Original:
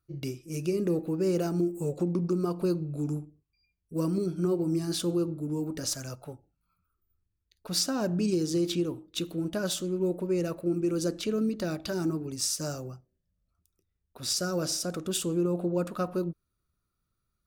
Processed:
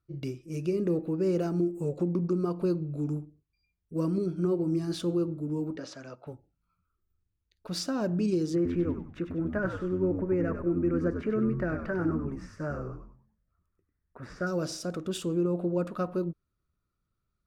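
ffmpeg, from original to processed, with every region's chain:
-filter_complex "[0:a]asettb=1/sr,asplit=3[s0][s1][s2];[s0]atrim=end=5.764[s3];[s1]atrim=start=5.76:end=6.27,asetpts=PTS-STARTPTS,afade=t=in:d=0.004:c=qsin,afade=t=out:st=0.506:d=0.004:c=qsin,highpass=240,lowpass=3800,acompressor=mode=upward:threshold=0.00158:ratio=2.5:attack=3.2:release=140:knee=2.83:detection=peak[s4];[s2]atrim=start=6.266[s5];[s3][s4]acrossfade=d=0.004:c1=hsin:c2=qsin[s6];[s6][s5]acrossfade=d=0.004:c1=qsin:c2=hsin,asettb=1/sr,asplit=3[s7][s8][s9];[s7]atrim=end=8.554[s10];[s8]atrim=start=8.55:end=14.47,asetpts=PTS-STARTPTS,afade=t=in:d=0.004:c=qsin,afade=t=out:st=5.916:d=0.004:c=qsin,acrossover=split=5700[s11][s12];[s12]acompressor=threshold=0.00447:ratio=4:attack=1:release=60[s13];[s11][s13]amix=inputs=2:normalize=0,highshelf=f=2600:t=q:w=3:g=-13,asplit=5[s14][s15][s16][s17][s18];[s15]adelay=97,afreqshift=-86,volume=0.447[s19];[s16]adelay=194,afreqshift=-172,volume=0.157[s20];[s17]adelay=291,afreqshift=-258,volume=0.055[s21];[s18]adelay=388,afreqshift=-344,volume=0.0191[s22];[s14][s19][s20][s21][s22]amix=inputs=5:normalize=0,atrim=end_sample=261072[s23];[s9]atrim=start=14.466[s24];[s10][s23]acrossfade=d=0.004:c1=hsin:c2=qsin[s25];[s25][s24]acrossfade=d=0.004:c1=qsin:c2=hsin,lowpass=f=2400:p=1,equalizer=f=780:w=5.6:g=-3"

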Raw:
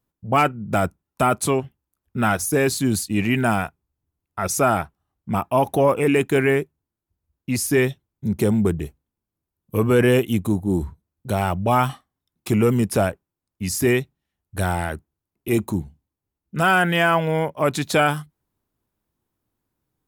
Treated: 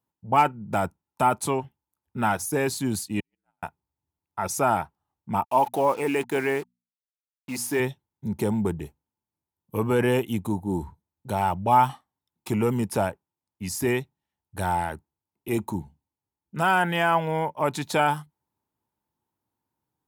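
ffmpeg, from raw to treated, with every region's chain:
-filter_complex "[0:a]asettb=1/sr,asplit=3[s0][s1][s2];[s0]atrim=end=3.204[s3];[s1]atrim=start=3.2:end=3.63,asetpts=PTS-STARTPTS,afade=t=in:d=0.004:c=qsin,afade=t=out:st=0.426:d=0.004:c=qsin,agate=range=0.00126:threshold=0.224:ratio=16:release=100:detection=peak,aeval=exprs='val(0)*sin(2*PI*56*n/s)':c=same[s4];[s2]atrim=start=3.626[s5];[s3][s4]acrossfade=d=0.004:c1=hsin:c2=qsin[s6];[s6][s5]acrossfade=d=0.004:c1=qsin:c2=hsin,asettb=1/sr,asplit=3[s7][s8][s9];[s7]atrim=end=5.444[s10];[s8]atrim=start=5.44:end=7.8,asetpts=PTS-STARTPTS,afade=t=in:d=0.004:c=qsin,afade=t=out:st=2.356:d=0.004:c=qsin,equalizer=f=91:w=0.83:g=-11,acrusher=bits=5:mix=0:aa=0.5,bandreject=f=60:t=h:w=6,bandreject=f=120:t=h:w=6,bandreject=f=180:t=h:w=6,bandreject=f=240:t=h:w=6[s11];[s9]atrim=start=7.796[s12];[s10][s11]acrossfade=d=0.004:c1=hsin:c2=qsin[s13];[s13][s12]acrossfade=d=0.004:c1=qsin:c2=hsin,highpass=80,equalizer=f=890:t=o:w=0.25:g=13,volume=0.501"

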